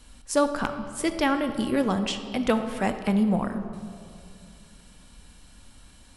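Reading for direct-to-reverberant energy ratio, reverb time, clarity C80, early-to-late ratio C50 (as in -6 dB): 7.5 dB, 2.5 s, 10.0 dB, 9.0 dB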